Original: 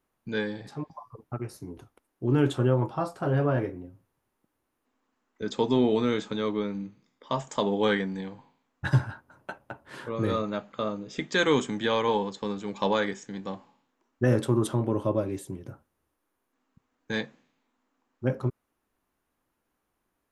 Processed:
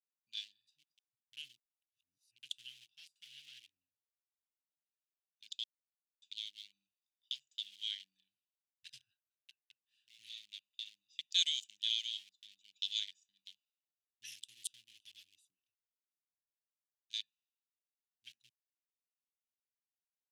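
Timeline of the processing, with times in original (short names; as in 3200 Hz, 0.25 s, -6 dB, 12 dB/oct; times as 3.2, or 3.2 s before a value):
1.37–2.43 reverse
5.64–6.22 mute
7.38–10.49 high shelf 2900 Hz -8 dB
12.19–12.59 resonant high shelf 1700 Hz -7.5 dB, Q 1.5
15.48–17.14 photocell phaser 1.1 Hz
whole clip: Wiener smoothing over 41 samples; elliptic high-pass 3000 Hz, stop band 60 dB; gain +3.5 dB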